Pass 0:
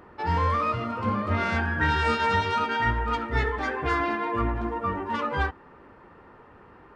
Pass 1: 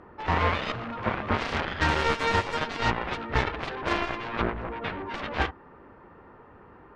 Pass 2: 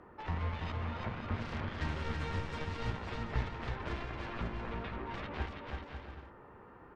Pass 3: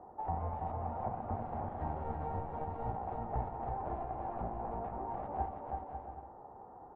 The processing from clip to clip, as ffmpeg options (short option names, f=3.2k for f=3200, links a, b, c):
-af "aeval=exprs='0.266*(cos(1*acos(clip(val(0)/0.266,-1,1)))-cos(1*PI/2))+0.075*(cos(7*acos(clip(val(0)/0.266,-1,1)))-cos(7*PI/2))':c=same,aemphasis=mode=reproduction:type=75fm"
-filter_complex "[0:a]acrossover=split=210[a][b];[b]acompressor=threshold=-37dB:ratio=4[c];[a][c]amix=inputs=2:normalize=0,asplit=2[d][e];[e]aecho=0:1:330|544.5|683.9|774.6|833.5:0.631|0.398|0.251|0.158|0.1[f];[d][f]amix=inputs=2:normalize=0,volume=-6dB"
-af "lowpass=f=770:t=q:w=8.6,volume=-4dB"